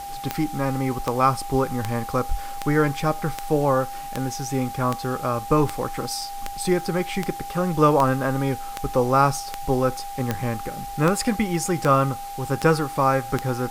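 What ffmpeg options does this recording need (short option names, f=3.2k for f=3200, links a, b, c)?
-af "adeclick=t=4,bandreject=f=800:w=30,afwtdn=0.0071"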